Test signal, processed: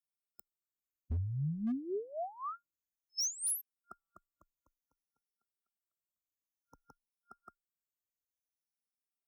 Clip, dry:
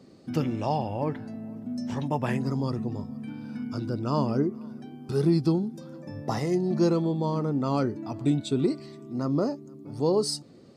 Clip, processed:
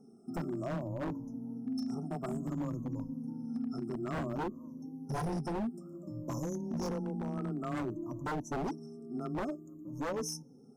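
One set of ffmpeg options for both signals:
ffmpeg -i in.wav -af "afftfilt=real='re*pow(10,18/40*sin(2*PI*(1.1*log(max(b,1)*sr/1024/100)/log(2)-(-0.56)*(pts-256)/sr)))':imag='im*pow(10,18/40*sin(2*PI*(1.1*log(max(b,1)*sr/1024/100)/log(2)-(-0.56)*(pts-256)/sr)))':win_size=1024:overlap=0.75,afreqshift=15,equalizer=frequency=125:width_type=o:width=1:gain=-5,equalizer=frequency=500:width_type=o:width=1:gain=-7,equalizer=frequency=1000:width_type=o:width=1:gain=-9,equalizer=frequency=2000:width_type=o:width=1:gain=-7,equalizer=frequency=8000:width_type=o:width=1:gain=-5,afftfilt=real='re*(1-between(b*sr/4096,1400,5200))':imag='im*(1-between(b*sr/4096,1400,5200))':win_size=4096:overlap=0.75,aeval=exprs='0.0531*(abs(mod(val(0)/0.0531+3,4)-2)-1)':channel_layout=same,volume=-4dB" out.wav

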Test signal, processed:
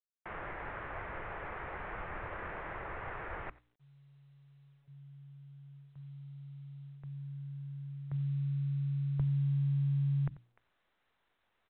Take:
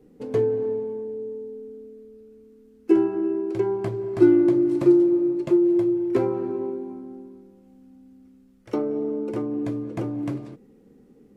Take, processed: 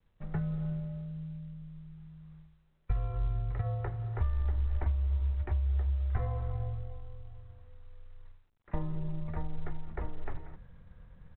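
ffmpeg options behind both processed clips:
ffmpeg -i in.wav -filter_complex "[0:a]areverse,acompressor=mode=upward:threshold=-35dB:ratio=2.5,areverse,lowshelf=frequency=180:gain=-8.5,agate=range=-33dB:threshold=-46dB:ratio=3:detection=peak,bandreject=frequency=530:width=12,asplit=2[link_01][link_02];[link_02]aecho=0:1:90:0.075[link_03];[link_01][link_03]amix=inputs=2:normalize=0,acompressor=threshold=-23dB:ratio=20,equalizer=frequency=125:width_type=o:width=1:gain=5,equalizer=frequency=250:width_type=o:width=1:gain=3,equalizer=frequency=500:width_type=o:width=1:gain=-8,highpass=frequency=230:width_type=q:width=0.5412,highpass=frequency=230:width_type=q:width=1.307,lowpass=frequency=2300:width_type=q:width=0.5176,lowpass=frequency=2300:width_type=q:width=0.7071,lowpass=frequency=2300:width_type=q:width=1.932,afreqshift=-280,bandreject=frequency=60:width_type=h:width=6,bandreject=frequency=120:width_type=h:width=6,bandreject=frequency=180:width_type=h:width=6,bandreject=frequency=240:width_type=h:width=6,bandreject=frequency=300:width_type=h:width=6" -ar 8000 -c:a pcm_mulaw out.wav

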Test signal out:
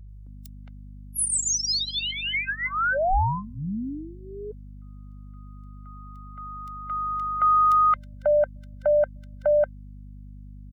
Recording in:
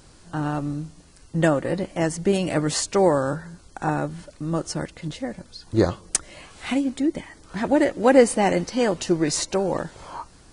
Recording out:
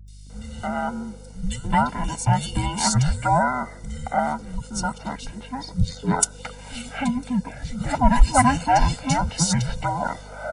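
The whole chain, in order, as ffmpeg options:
ffmpeg -i in.wav -filter_complex "[0:a]afftfilt=real='real(if(between(b,1,1008),(2*floor((b-1)/24)+1)*24-b,b),0)':imag='imag(if(between(b,1,1008),(2*floor((b-1)/24)+1)*24-b,b),0)*if(between(b,1,1008),-1,1)':win_size=2048:overlap=0.75,aecho=1:1:1.4:0.94,aeval=exprs='val(0)+0.00891*(sin(2*PI*50*n/s)+sin(2*PI*2*50*n/s)/2+sin(2*PI*3*50*n/s)/3+sin(2*PI*4*50*n/s)/4+sin(2*PI*5*50*n/s)/5)':channel_layout=same,acrossover=split=160|2900[link_01][link_02][link_03];[link_03]adelay=80[link_04];[link_02]adelay=300[link_05];[link_01][link_05][link_04]amix=inputs=3:normalize=0" out.wav

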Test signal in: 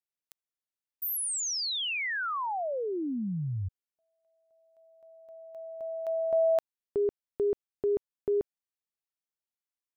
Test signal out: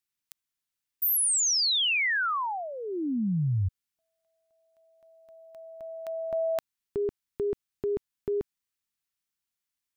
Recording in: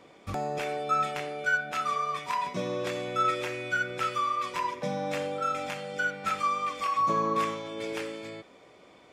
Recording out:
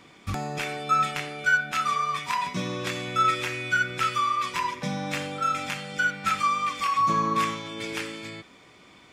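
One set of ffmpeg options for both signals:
ffmpeg -i in.wav -af "equalizer=frequency=550:width_type=o:width=1.3:gain=-12.5,volume=7dB" out.wav

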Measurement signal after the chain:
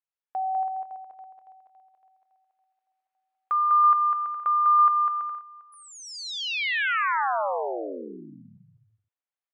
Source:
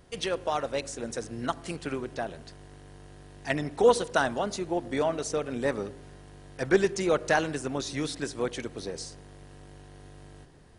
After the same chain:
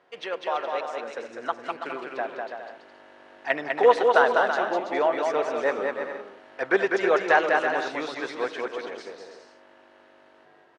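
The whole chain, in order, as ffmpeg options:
ffmpeg -i in.wav -af "dynaudnorm=framelen=140:gausssize=31:maxgain=5dB,highpass=570,lowpass=2300,aecho=1:1:200|330|414.5|469.4|505.1:0.631|0.398|0.251|0.158|0.1,volume=2.5dB" out.wav

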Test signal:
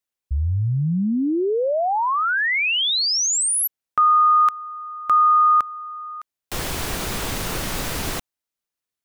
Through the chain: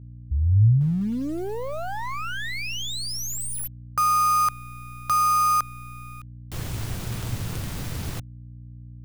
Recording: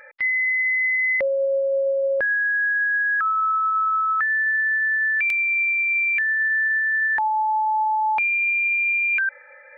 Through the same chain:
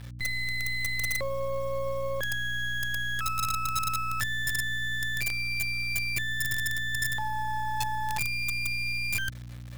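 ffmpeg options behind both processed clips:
ffmpeg -i in.wav -filter_complex "[0:a]acrossover=split=280[link_01][link_02];[link_02]acrusher=bits=4:dc=4:mix=0:aa=0.000001[link_03];[link_01][link_03]amix=inputs=2:normalize=0,aeval=exprs='val(0)+0.01*(sin(2*PI*60*n/s)+sin(2*PI*2*60*n/s)/2+sin(2*PI*3*60*n/s)/3+sin(2*PI*4*60*n/s)/4+sin(2*PI*5*60*n/s)/5)':channel_layout=same,equalizer=frequency=110:width_type=o:width=0.9:gain=12.5,volume=-6dB" out.wav

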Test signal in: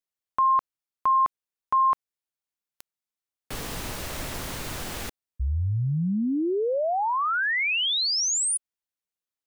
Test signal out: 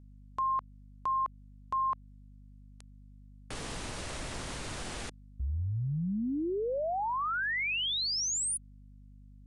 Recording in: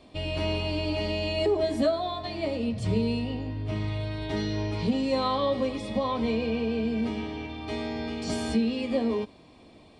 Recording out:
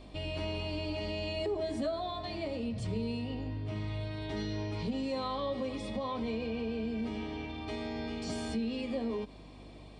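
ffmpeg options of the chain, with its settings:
ffmpeg -i in.wav -af "acompressor=threshold=-36dB:ratio=2:attack=0.47:release=121:knee=1:detection=rms,aeval=exprs='val(0)+0.00251*(sin(2*PI*50*n/s)+sin(2*PI*2*50*n/s)/2+sin(2*PI*3*50*n/s)/3+sin(2*PI*4*50*n/s)/4+sin(2*PI*5*50*n/s)/5)':channel_layout=same,aresample=22050,aresample=44100" out.wav

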